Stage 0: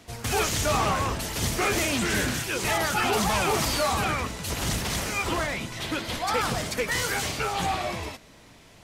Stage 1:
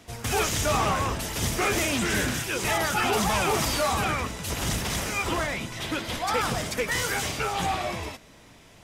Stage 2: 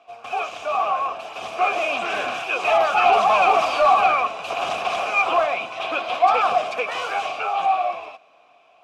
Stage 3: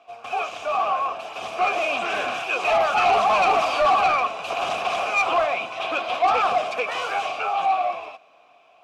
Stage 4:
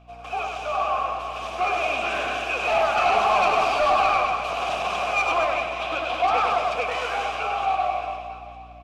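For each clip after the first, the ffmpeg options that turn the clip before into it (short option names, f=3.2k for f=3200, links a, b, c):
-af "bandreject=f=4.3k:w=14"
-filter_complex "[0:a]dynaudnorm=f=340:g=11:m=9.5dB,asplit=3[a][b][c];[a]bandpass=f=730:t=q:w=8,volume=0dB[d];[b]bandpass=f=1.09k:t=q:w=8,volume=-6dB[e];[c]bandpass=f=2.44k:t=q:w=8,volume=-9dB[f];[d][e][f]amix=inputs=3:normalize=0,asplit=2[g][h];[h]highpass=f=720:p=1,volume=10dB,asoftclip=type=tanh:threshold=-11.5dB[i];[g][i]amix=inputs=2:normalize=0,lowpass=f=4.6k:p=1,volume=-6dB,volume=6dB"
-af "asoftclip=type=tanh:threshold=-12.5dB"
-filter_complex "[0:a]aeval=exprs='val(0)+0.00398*(sin(2*PI*60*n/s)+sin(2*PI*2*60*n/s)/2+sin(2*PI*3*60*n/s)/3+sin(2*PI*4*60*n/s)/4+sin(2*PI*5*60*n/s)/5)':c=same,asplit=2[a][b];[b]aecho=0:1:100|230|399|618.7|904.3:0.631|0.398|0.251|0.158|0.1[c];[a][c]amix=inputs=2:normalize=0,volume=-3dB"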